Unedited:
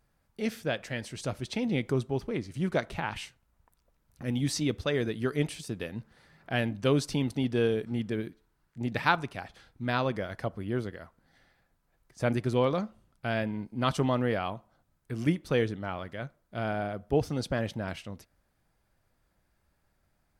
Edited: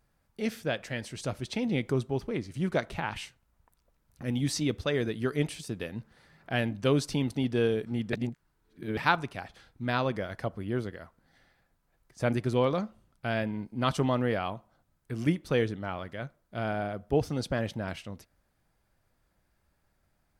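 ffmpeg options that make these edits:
ffmpeg -i in.wav -filter_complex "[0:a]asplit=3[link_01][link_02][link_03];[link_01]atrim=end=8.132[link_04];[link_02]atrim=start=8.128:end=8.972,asetpts=PTS-STARTPTS,areverse[link_05];[link_03]atrim=start=8.968[link_06];[link_04][link_05]acrossfade=duration=0.004:curve1=hsin:curve2=hsin[link_07];[link_07][link_06]acrossfade=duration=0.004:curve1=hsin:curve2=hsin" out.wav

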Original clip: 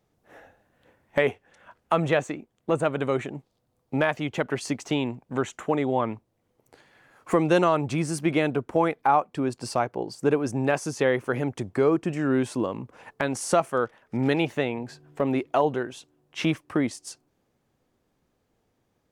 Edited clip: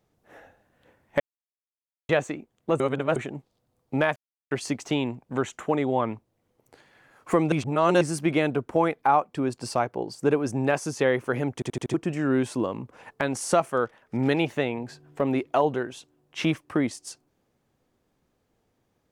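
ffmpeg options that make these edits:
ffmpeg -i in.wav -filter_complex "[0:a]asplit=14[link_01][link_02][link_03][link_04][link_05][link_06][link_07][link_08][link_09][link_10][link_11][link_12][link_13][link_14];[link_01]atrim=end=1.2,asetpts=PTS-STARTPTS,afade=type=out:start_time=1.196:duration=0.004:curve=hsin[link_15];[link_02]atrim=start=1.2:end=2.09,asetpts=PTS-STARTPTS,volume=0[link_16];[link_03]atrim=start=2.09:end=2.802,asetpts=PTS-STARTPTS,afade=type=in:duration=0.004:curve=hsin[link_17];[link_04]atrim=start=2.798:end=3.162,asetpts=PTS-STARTPTS,areverse[link_18];[link_05]atrim=start=3.158:end=4.16,asetpts=PTS-STARTPTS,afade=type=out:start_time=0.998:duration=0.004:curve=hsin[link_19];[link_06]atrim=start=4.16:end=4.51,asetpts=PTS-STARTPTS,volume=0[link_20];[link_07]atrim=start=4.51:end=7.522,asetpts=PTS-STARTPTS,afade=type=in:duration=0.004:curve=hsin[link_21];[link_08]atrim=start=7.518:end=8.012,asetpts=PTS-STARTPTS,areverse[link_22];[link_09]atrim=start=8.008:end=11.622[link_23];[link_10]atrim=start=11.538:end=11.622[link_24];[link_11]atrim=start=11.538:end=11.622[link_25];[link_12]atrim=start=11.538:end=11.622[link_26];[link_13]atrim=start=11.538:end=11.622[link_27];[link_14]atrim=start=11.938[link_28];[link_15][link_16][link_17]concat=n=3:v=0:a=1[link_29];[link_29][link_18]acrossfade=duration=0.004:curve1=hsin:curve2=hsin[link_30];[link_19][link_20][link_21]concat=n=3:v=0:a=1[link_31];[link_30][link_31]acrossfade=duration=0.004:curve1=hsin:curve2=hsin[link_32];[link_32][link_22]acrossfade=duration=0.004:curve1=hsin:curve2=hsin[link_33];[link_33][link_23]acrossfade=duration=0.004:curve1=hsin:curve2=hsin[link_34];[link_34][link_24]acrossfade=duration=0.004:curve1=hsin:curve2=hsin[link_35];[link_35][link_25]acrossfade=duration=0.004:curve1=hsin:curve2=hsin[link_36];[link_36][link_26]acrossfade=duration=0.004:curve1=hsin:curve2=hsin[link_37];[link_37][link_27]acrossfade=duration=0.004:curve1=hsin:curve2=hsin[link_38];[link_38][link_28]acrossfade=duration=0.004:curve1=hsin:curve2=hsin" out.wav

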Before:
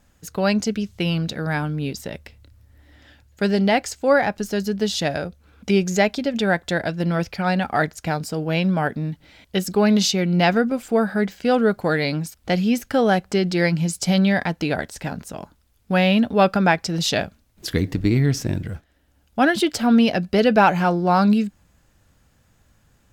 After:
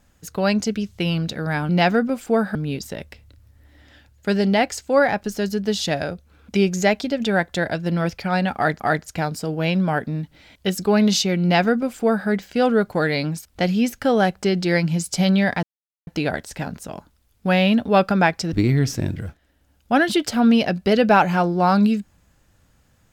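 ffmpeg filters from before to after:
ffmpeg -i in.wav -filter_complex "[0:a]asplit=6[link_01][link_02][link_03][link_04][link_05][link_06];[link_01]atrim=end=1.692[link_07];[link_02]atrim=start=10.308:end=11.172[link_08];[link_03]atrim=start=1.688:end=7.942[link_09];[link_04]atrim=start=7.688:end=14.52,asetpts=PTS-STARTPTS,afade=type=out:start_time=6.828:duration=0.004:curve=hsin,apad=pad_dur=0.44[link_10];[link_05]atrim=start=14.52:end=16.972,asetpts=PTS-STARTPTS,afade=type=in:duration=0.004:curve=hsin[link_11];[link_06]atrim=start=17.988[link_12];[link_07][link_08]acrossfade=duration=0.004:curve1=hsin:curve2=hsin[link_13];[link_13][link_09]acrossfade=duration=0.004:curve1=hsin:curve2=hsin[link_14];[link_10][link_11]concat=n=2:v=0:a=1[link_15];[link_14][link_15]acrossfade=duration=0.004:curve1=hsin:curve2=hsin[link_16];[link_16][link_12]acrossfade=duration=0.004:curve1=hsin:curve2=hsin" out.wav

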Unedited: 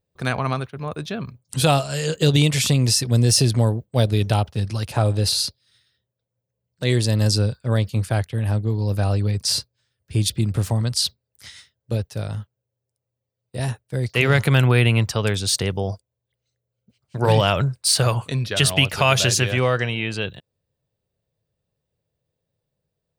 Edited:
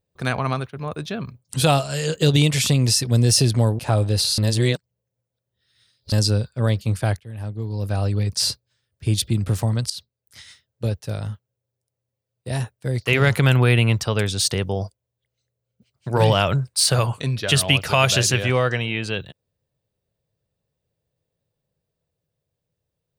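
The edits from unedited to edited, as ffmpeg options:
ffmpeg -i in.wav -filter_complex "[0:a]asplit=6[link_01][link_02][link_03][link_04][link_05][link_06];[link_01]atrim=end=3.792[link_07];[link_02]atrim=start=4.868:end=5.462[link_08];[link_03]atrim=start=5.458:end=7.202,asetpts=PTS-STARTPTS,areverse[link_09];[link_04]atrim=start=7.198:end=8.28,asetpts=PTS-STARTPTS,afade=type=out:start_time=1.078:duration=0.004:curve=hsin:silence=0.16788[link_10];[link_05]atrim=start=8.28:end=10.98,asetpts=PTS-STARTPTS,afade=type=in:duration=1.04:silence=0.16788,afade=type=out:start_time=2.696:duration=0.004:curve=hsin:silence=0.158489[link_11];[link_06]atrim=start=10.98,asetpts=PTS-STARTPTS,afade=type=in:duration=0.98:curve=qsin:silence=0.158489[link_12];[link_07][link_08]acrossfade=duration=0.004:curve1=hsin:curve2=hsin[link_13];[link_13][link_09]acrossfade=duration=0.004:curve1=hsin:curve2=hsin[link_14];[link_10][link_11][link_12]concat=n=3:v=0:a=1[link_15];[link_14][link_15]acrossfade=duration=0.004:curve1=hsin:curve2=hsin" out.wav

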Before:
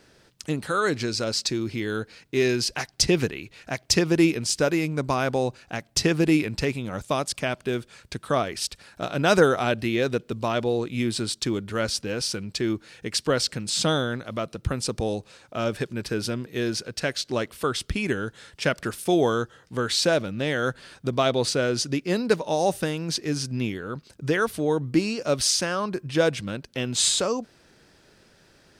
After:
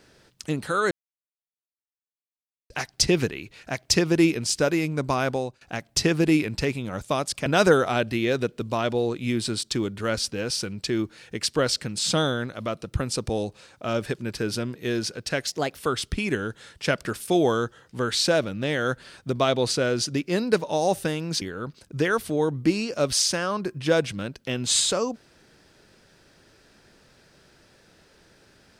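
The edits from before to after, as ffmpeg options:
ffmpeg -i in.wav -filter_complex "[0:a]asplit=8[link_01][link_02][link_03][link_04][link_05][link_06][link_07][link_08];[link_01]atrim=end=0.91,asetpts=PTS-STARTPTS,afade=type=out:start_time=0.906:duration=0.004:curve=hsin[link_09];[link_02]atrim=start=0.91:end=2.7,asetpts=PTS-STARTPTS,volume=0[link_10];[link_03]atrim=start=2.7:end=5.61,asetpts=PTS-STARTPTS,afade=type=in:duration=0.004:curve=hsin,afade=type=out:start_time=2.58:duration=0.33:silence=0.105925[link_11];[link_04]atrim=start=5.61:end=7.462,asetpts=PTS-STARTPTS,afade=type=in:duration=0.004:curve=hsin:silence=0.105925[link_12];[link_05]atrim=start=9.168:end=17.184[link_13];[link_06]atrim=start=17.18:end=17.55,asetpts=PTS-STARTPTS,asetrate=53802,aresample=44100[link_14];[link_07]atrim=start=17.546:end=23.192[link_15];[link_08]atrim=start=23.698[link_16];[link_09][link_10][link_11][link_12]concat=n=4:v=0:a=1[link_17];[link_17][link_13]acrossfade=duration=0.004:curve1=hsin:curve2=hsin[link_18];[link_18][link_14]acrossfade=duration=0.004:curve1=hsin:curve2=hsin[link_19];[link_19][link_15]acrossfade=duration=0.004:curve1=hsin:curve2=hsin[link_20];[link_20][link_16]acrossfade=duration=0.004:curve1=hsin:curve2=hsin" out.wav

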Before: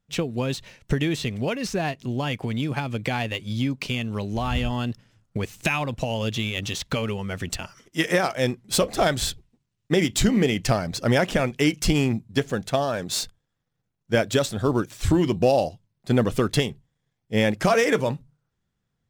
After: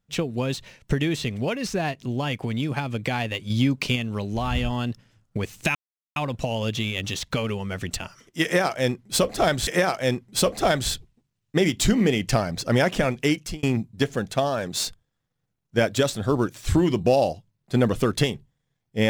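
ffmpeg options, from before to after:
ffmpeg -i in.wav -filter_complex "[0:a]asplit=6[link_01][link_02][link_03][link_04][link_05][link_06];[link_01]atrim=end=3.502[link_07];[link_02]atrim=start=3.498:end=3.962,asetpts=PTS-STARTPTS,volume=4dB[link_08];[link_03]atrim=start=3.958:end=5.75,asetpts=PTS-STARTPTS,afade=type=out:start_time=1.788:duration=0.004:curve=hsin,apad=pad_dur=0.41[link_09];[link_04]atrim=start=5.75:end=9.262,asetpts=PTS-STARTPTS,afade=type=in:duration=0.004:curve=hsin[link_10];[link_05]atrim=start=8.028:end=11.99,asetpts=PTS-STARTPTS,afade=type=out:start_time=3.582:duration=0.38[link_11];[link_06]atrim=start=11.99,asetpts=PTS-STARTPTS,afade=type=in:duration=0.004:curve=hsin[link_12];[link_07][link_08]acrossfade=duration=0.004:curve1=hsin:curve2=hsin[link_13];[link_09][link_10]concat=n=2:v=0:a=1[link_14];[link_13][link_14]acrossfade=duration=0.004:curve1=hsin:curve2=hsin[link_15];[link_11][link_12]concat=n=2:v=0:a=1[link_16];[link_15][link_16]acrossfade=duration=0.004:curve1=hsin:curve2=hsin" out.wav

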